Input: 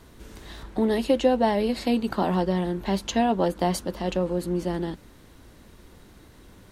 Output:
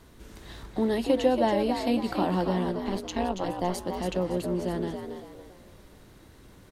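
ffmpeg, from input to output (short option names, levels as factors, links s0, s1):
-filter_complex "[0:a]asplit=3[s0][s1][s2];[s0]afade=t=out:st=2.71:d=0.02[s3];[s1]tremolo=f=180:d=0.889,afade=t=in:st=2.71:d=0.02,afade=t=out:st=3.77:d=0.02[s4];[s2]afade=t=in:st=3.77:d=0.02[s5];[s3][s4][s5]amix=inputs=3:normalize=0,asplit=5[s6][s7][s8][s9][s10];[s7]adelay=280,afreqshift=63,volume=0.447[s11];[s8]adelay=560,afreqshift=126,volume=0.151[s12];[s9]adelay=840,afreqshift=189,volume=0.0519[s13];[s10]adelay=1120,afreqshift=252,volume=0.0176[s14];[s6][s11][s12][s13][s14]amix=inputs=5:normalize=0,volume=0.708"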